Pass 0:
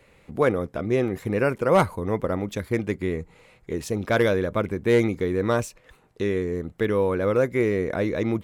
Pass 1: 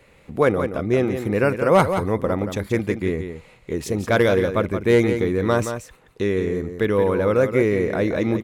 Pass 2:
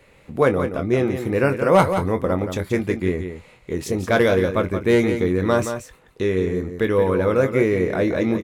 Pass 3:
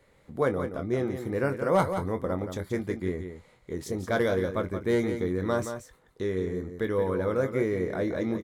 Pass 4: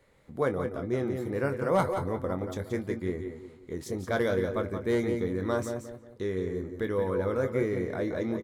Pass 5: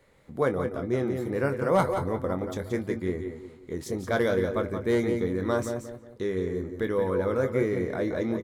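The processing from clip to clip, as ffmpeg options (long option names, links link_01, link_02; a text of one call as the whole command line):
ffmpeg -i in.wav -af "aecho=1:1:174:0.376,volume=3dB" out.wav
ffmpeg -i in.wav -filter_complex "[0:a]asplit=2[link_01][link_02];[link_02]adelay=22,volume=-9dB[link_03];[link_01][link_03]amix=inputs=2:normalize=0" out.wav
ffmpeg -i in.wav -af "equalizer=frequency=2600:width=5.4:gain=-12,volume=-8.5dB" out.wav
ffmpeg -i in.wav -filter_complex "[0:a]asplit=2[link_01][link_02];[link_02]adelay=182,lowpass=frequency=1400:poles=1,volume=-9.5dB,asplit=2[link_03][link_04];[link_04]adelay=182,lowpass=frequency=1400:poles=1,volume=0.41,asplit=2[link_05][link_06];[link_06]adelay=182,lowpass=frequency=1400:poles=1,volume=0.41,asplit=2[link_07][link_08];[link_08]adelay=182,lowpass=frequency=1400:poles=1,volume=0.41[link_09];[link_01][link_03][link_05][link_07][link_09]amix=inputs=5:normalize=0,volume=-2dB" out.wav
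ffmpeg -i in.wav -af "bandreject=frequency=50:width_type=h:width=6,bandreject=frequency=100:width_type=h:width=6,volume=2.5dB" out.wav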